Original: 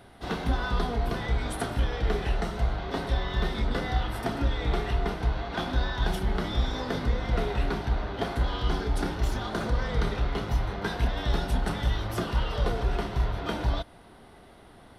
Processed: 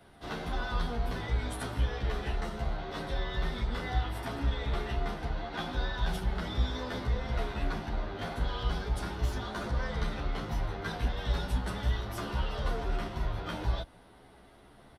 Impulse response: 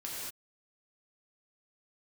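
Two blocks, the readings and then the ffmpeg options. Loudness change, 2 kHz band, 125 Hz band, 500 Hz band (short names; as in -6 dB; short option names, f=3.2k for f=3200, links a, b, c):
-5.0 dB, -4.0 dB, -4.5 dB, -6.0 dB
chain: -filter_complex "[0:a]acrossover=split=160|730[a][b][c];[b]aeval=exprs='0.0266*(abs(mod(val(0)/0.0266+3,4)-2)-1)':c=same[d];[a][d][c]amix=inputs=3:normalize=0,asplit=2[e][f];[f]adelay=11.2,afreqshift=0.4[g];[e][g]amix=inputs=2:normalize=1,volume=-1.5dB"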